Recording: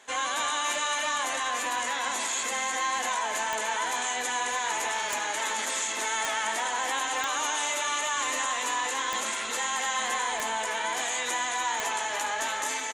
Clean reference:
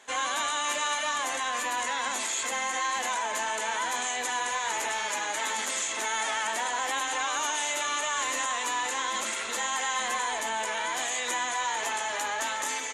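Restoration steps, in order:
click removal
echo removal 293 ms −8 dB

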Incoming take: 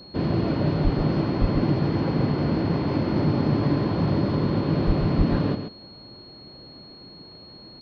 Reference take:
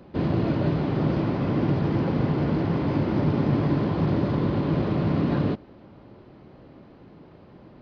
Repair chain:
notch filter 4,300 Hz, Q 30
high-pass at the plosives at 0:00.83/0:01.40/0:04.86/0:05.17
echo removal 134 ms −8 dB

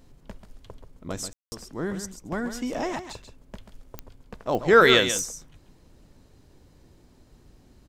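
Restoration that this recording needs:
click removal
ambience match 0:01.33–0:01.52
echo removal 137 ms −10 dB

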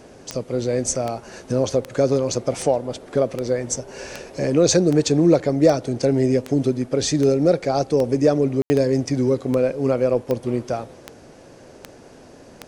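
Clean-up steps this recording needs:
click removal
ambience match 0:08.62–0:08.70

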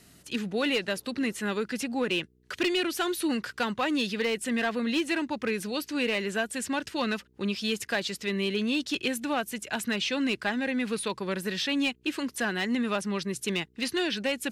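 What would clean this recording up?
clipped peaks rebuilt −20 dBFS
hum removal 62.1 Hz, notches 7

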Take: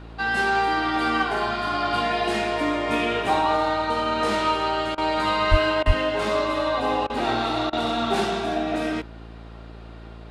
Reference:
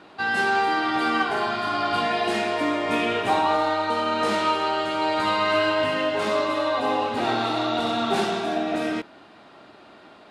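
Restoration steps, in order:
hum removal 56.2 Hz, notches 9
0:05.50–0:05.62: high-pass filter 140 Hz 24 dB per octave
0:05.86–0:05.98: high-pass filter 140 Hz 24 dB per octave
repair the gap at 0:04.95/0:05.83/0:07.07/0:07.70, 27 ms

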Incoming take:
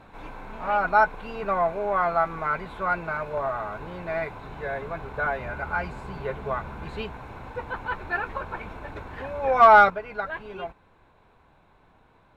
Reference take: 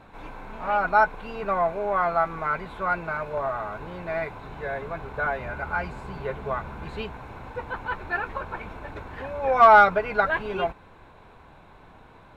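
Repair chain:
level 0 dB, from 0:09.90 +8.5 dB

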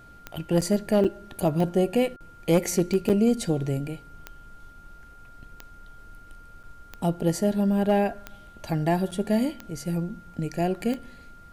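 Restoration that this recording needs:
clipped peaks rebuilt −13 dBFS
click removal
notch filter 1,400 Hz, Q 30
repair the gap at 0:00.61/0:01.04/0:03.09/0:06.63/0:09.11, 7 ms

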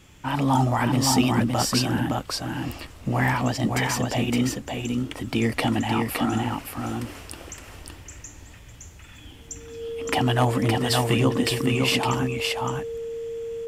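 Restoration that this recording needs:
clipped peaks rebuilt −10 dBFS
click removal
notch filter 460 Hz, Q 30
echo removal 565 ms −3.5 dB

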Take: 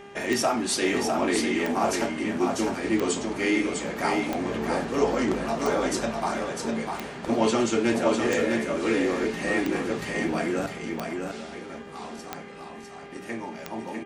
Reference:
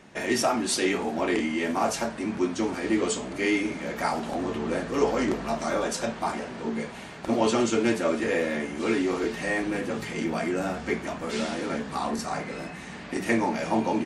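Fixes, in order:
click removal
hum removal 400.9 Hz, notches 8
echo removal 652 ms −4.5 dB
level 0 dB, from 0:10.66 +10.5 dB

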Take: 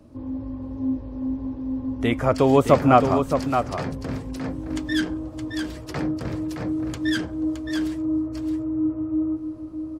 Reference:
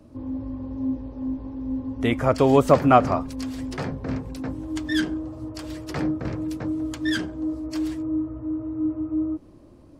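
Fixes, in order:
echo removal 618 ms −7 dB

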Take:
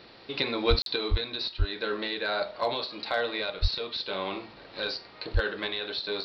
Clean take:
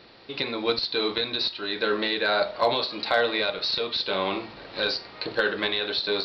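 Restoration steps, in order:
high-pass at the plosives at 0:00.69/0:01.10/0:01.58/0:03.61/0:05.33
repair the gap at 0:00.82, 42 ms
level correction +6 dB, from 0:00.96

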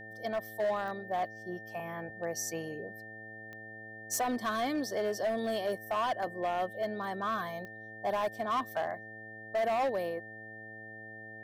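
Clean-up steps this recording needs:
clipped peaks rebuilt −26.5 dBFS
click removal
hum removal 109.6 Hz, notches 7
notch filter 1,800 Hz, Q 30

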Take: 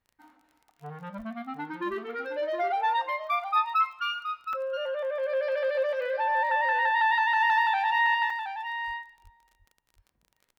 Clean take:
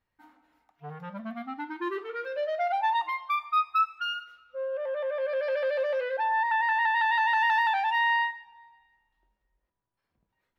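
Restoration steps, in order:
click removal
0:01.17–0:01.29: high-pass filter 140 Hz 24 dB per octave
0:08.86–0:08.98: high-pass filter 140 Hz 24 dB per octave
0:09.23–0:09.35: high-pass filter 140 Hz 24 dB per octave
repair the gap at 0:04.53/0:08.30, 3.3 ms
echo removal 721 ms −8.5 dB

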